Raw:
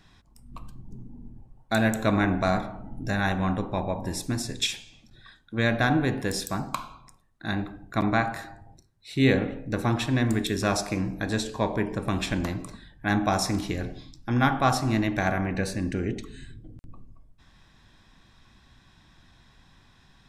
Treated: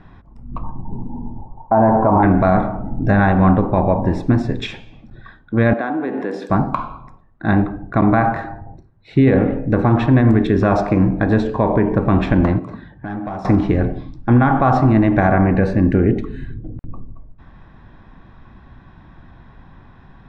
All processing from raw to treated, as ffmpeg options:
-filter_complex "[0:a]asettb=1/sr,asplit=3[a][b][c];[a]atrim=end=0.634[d];[b]atrim=start=0.63:end=2.23,asetpts=PTS-STARTPTS,afade=t=in:d=0.004:c=qsin,afade=t=out:st=1.596:d=0.004:c=qsin,lowpass=f=910:t=q:w=8.3,asplit=2[e][f];[f]adelay=12,volume=-11dB[g];[e][g]amix=inputs=2:normalize=0,atrim=end_sample=70560[h];[c]atrim=start=2.226[i];[d][h]acrossfade=d=0.004:c1=hsin:c2=qsin[j];[j][i]acrossfade=d=0.004:c1=qsin:c2=hsin,asettb=1/sr,asplit=3[k][l][m];[k]atrim=end=5.734[n];[l]atrim=start=5.73:end=6.5,asetpts=PTS-STARTPTS,afade=t=in:d=0.004:c=qsin,afade=t=out:st=0.766:d=0.004:c=qsin,acompressor=threshold=-29dB:ratio=12:attack=3.2:release=140:knee=1:detection=peak,highpass=f=240:w=0.5412,highpass=f=240:w=1.3066[o];[m]atrim=start=6.496[p];[n][o]acrossfade=d=0.004:c1=hsin:c2=qsin[q];[q][p]acrossfade=d=0.004:c1=qsin:c2=hsin,asettb=1/sr,asplit=3[r][s][t];[r]atrim=end=12.594[u];[s]atrim=start=12.59:end=13.45,asetpts=PTS-STARTPTS,afade=t=in:d=0.004:c=qsin,afade=t=out:st=0.856:d=0.004:c=qsin,highpass=80,aeval=exprs='clip(val(0),-1,0.0841)':c=same,acompressor=threshold=-40dB:ratio=4:attack=3.2:release=140:knee=1:detection=peak[v];[t]atrim=start=13.446[w];[u][v]acrossfade=d=0.004:c1=hsin:c2=qsin[x];[x][w]acrossfade=d=0.004:c1=qsin:c2=hsin,lowpass=1.3k,alimiter=level_in=18.5dB:limit=-1dB:release=50:level=0:latency=1,volume=-4dB"

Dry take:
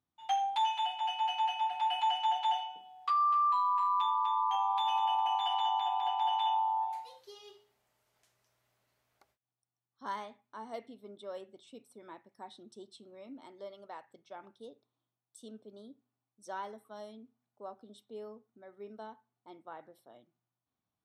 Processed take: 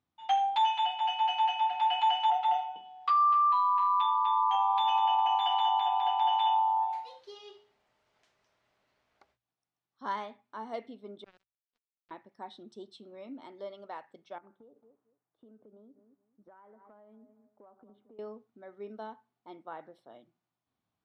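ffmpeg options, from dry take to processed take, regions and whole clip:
-filter_complex "[0:a]asettb=1/sr,asplit=3[a][b][c];[a]atrim=end=2.304[d];[b]atrim=start=2.3:end=2.76,asetpts=PTS-STARTPTS,afade=t=in:d=0.004:c=qsin,afade=t=out:st=0.456:d=0.004:c=qsin,highshelf=f=2.5k:g=-10,aecho=1:1:1.5:0.84,atrim=end_sample=20286[e];[c]atrim=start=2.756[f];[d][e]acrossfade=d=0.004:c1=hsin:c2=qsin[g];[g][f]acrossfade=d=0.004:c1=qsin:c2=hsin,asettb=1/sr,asplit=3[h][i][j];[h]atrim=end=3.334[k];[i]atrim=start=3.33:end=4.27,asetpts=PTS-STARTPTS,afade=t=in:d=0.004:c=qsin,afade=t=out:st=0.936:d=0.004:c=qsin,lowpass=6.2k,lowshelf=f=280:g=-11.5[l];[j]atrim=start=4.266[m];[k][l]acrossfade=d=0.004:c1=hsin:c2=qsin[n];[n][m]acrossfade=d=0.004:c1=qsin:c2=hsin,asettb=1/sr,asplit=3[o][p][q];[o]atrim=end=11.244[r];[p]atrim=start=11.24:end=12.11,asetpts=PTS-STARTPTS,afade=t=in:d=0.004:c=qsin,afade=t=out:st=0.866:d=0.004:c=qsin,acompressor=threshold=-53dB:ratio=2.5:attack=3.2:release=140:knee=1:detection=peak,acrusher=bits=6:mix=0:aa=0.5[s];[q]atrim=start=12.106[t];[r][s]acrossfade=d=0.004:c1=hsin:c2=qsin[u];[u][t]acrossfade=d=0.004:c1=qsin:c2=hsin,asettb=1/sr,asplit=3[v][w][x];[v]atrim=end=14.384[y];[w]atrim=start=14.38:end=18.19,asetpts=PTS-STARTPTS,afade=t=in:d=0.004:c=qsin,afade=t=out:st=3.806:d=0.004:c=qsin,lowpass=f=1.9k:w=0.5412,lowpass=f=1.9k:w=1.3066,asplit=2[z][aa];[aa]adelay=221,lowpass=f=1.1k:p=1,volume=-18.5dB,asplit=2[ab][ac];[ac]adelay=221,lowpass=f=1.1k:p=1,volume=0.24[ad];[z][ab][ad]amix=inputs=3:normalize=0,atrim=end_sample=168021,acompressor=threshold=-57dB:ratio=12:attack=3.2:release=140:knee=1:detection=peak[ae];[x]atrim=start=18.186[af];[y][ae]acrossfade=d=0.004:c1=hsin:c2=qsin[ag];[ag][af]acrossfade=d=0.004:c1=qsin:c2=hsin,lowpass=4.4k,bandreject=f=60:t=h:w=6,bandreject=f=120:t=h:w=6,volume=4dB"

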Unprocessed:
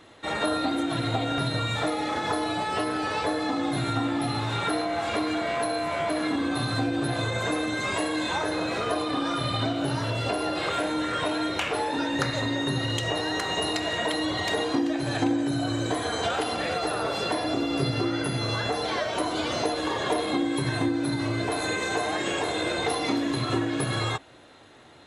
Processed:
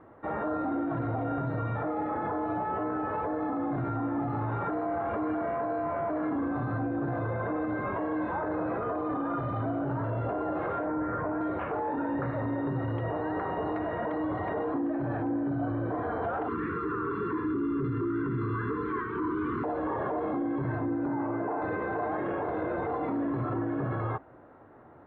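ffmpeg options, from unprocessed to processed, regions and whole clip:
-filter_complex "[0:a]asettb=1/sr,asplit=3[a][b][c];[a]atrim=end=10.864[d];[b]atrim=start=10.86:end=11.41,asetpts=PTS-STARTPTS,afade=t=in:d=0.004:c=qsin,afade=t=out:st=0.546:d=0.004:c=qsin,lowpass=f=2.2k:w=0.5412,lowpass=f=2.2k:w=1.3066,asubboost=boost=6.5:cutoff=250[e];[c]atrim=start=11.406[f];[d][e]acrossfade=d=0.004:c1=hsin:c2=qsin[g];[g][f]acrossfade=d=0.004:c1=qsin:c2=hsin,asettb=1/sr,asplit=3[h][i][j];[h]atrim=end=16.484[k];[i]atrim=start=16.48:end=19.64,asetpts=PTS-STARTPTS,afade=t=in:d=0.004:c=qsin,afade=t=out:st=3.156:d=0.004:c=qsin,asuperstop=centerf=660:order=12:qfactor=1.1,equalizer=f=580:t=o:w=2.2:g=7[l];[j]atrim=start=19.636[m];[k][l]acrossfade=d=0.004:c1=hsin:c2=qsin[n];[n][m]acrossfade=d=0.004:c1=qsin:c2=hsin,asettb=1/sr,asplit=3[o][p][q];[o]atrim=end=21.064[r];[p]atrim=start=21.06:end=21.62,asetpts=PTS-STARTPTS,afade=t=in:d=0.004:c=qsin,afade=t=out:st=0.556:d=0.004:c=qsin,highpass=200,lowpass=2.3k,equalizer=f=860:t=o:w=0.21:g=9.5[s];[q]atrim=start=21.616[t];[r][s]acrossfade=d=0.004:c1=hsin:c2=qsin[u];[u][t]acrossfade=d=0.004:c1=qsin:c2=hsin,lowpass=f=1.4k:w=0.5412,lowpass=f=1.4k:w=1.3066,alimiter=limit=-24dB:level=0:latency=1:release=10"

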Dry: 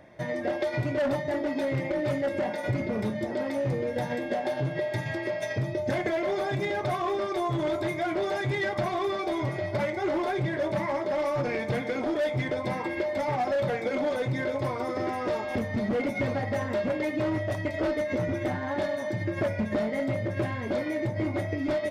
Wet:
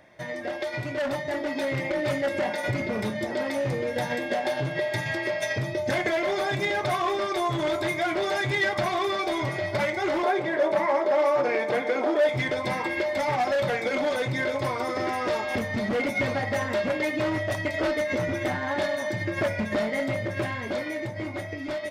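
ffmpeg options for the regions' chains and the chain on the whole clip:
-filter_complex "[0:a]asettb=1/sr,asplit=3[a][b][c];[a]atrim=end=10.234[d];[b]atrim=start=10.23:end=12.29,asetpts=PTS-STARTPTS,afade=t=in:d=0.004:c=qsin,afade=t=out:st=2.056:d=0.004:c=qsin,highpass=390,tiltshelf=f=1.5k:g=7[e];[c]atrim=start=12.286[f];[d][e]acrossfade=d=0.004:c1=hsin:c2=qsin[g];[g][f]acrossfade=d=0.004:c1=qsin:c2=hsin,tiltshelf=f=880:g=-4.5,dynaudnorm=f=160:g=17:m=5dB,volume=-1.5dB"

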